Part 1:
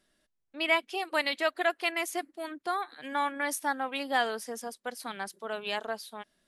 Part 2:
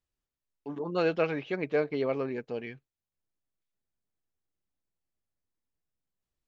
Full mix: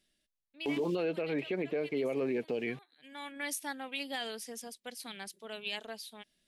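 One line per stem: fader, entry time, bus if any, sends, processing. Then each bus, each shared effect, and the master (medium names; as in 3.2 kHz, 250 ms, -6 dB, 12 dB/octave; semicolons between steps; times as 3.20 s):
-12.0 dB, 0.00 s, no send, bass shelf 490 Hz +9.5 dB; auto duck -18 dB, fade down 1.15 s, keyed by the second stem
+2.0 dB, 0.00 s, no send, word length cut 10-bit, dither none; band-pass filter 400 Hz, Q 0.66; three bands compressed up and down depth 100%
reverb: none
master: resonant high shelf 1.8 kHz +10 dB, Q 1.5; peak limiter -25 dBFS, peak gain reduction 9.5 dB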